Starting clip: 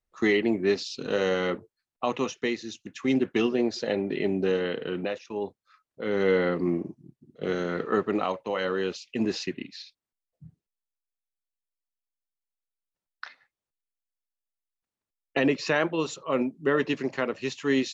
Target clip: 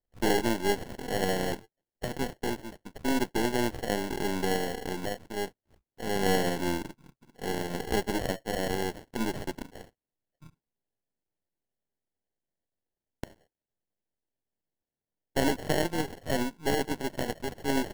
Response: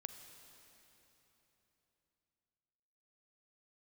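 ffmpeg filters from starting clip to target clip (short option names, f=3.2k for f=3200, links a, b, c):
-af "aeval=exprs='if(lt(val(0),0),0.251*val(0),val(0))':c=same,acrusher=samples=36:mix=1:aa=0.000001"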